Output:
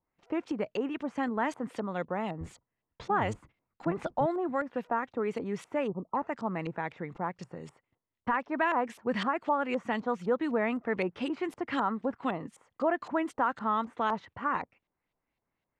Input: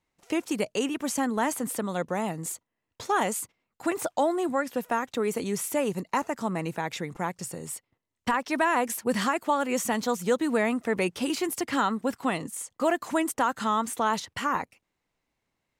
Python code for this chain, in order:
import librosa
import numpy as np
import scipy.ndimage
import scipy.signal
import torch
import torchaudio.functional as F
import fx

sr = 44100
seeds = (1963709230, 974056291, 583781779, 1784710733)

y = fx.octave_divider(x, sr, octaves=1, level_db=1.0, at=(2.4, 4.26))
y = fx.spec_erase(y, sr, start_s=5.87, length_s=0.29, low_hz=1300.0, high_hz=12000.0)
y = fx.filter_lfo_lowpass(y, sr, shape='saw_up', hz=3.9, low_hz=800.0, high_hz=4000.0, q=1.2)
y = F.gain(torch.from_numpy(y), -4.5).numpy()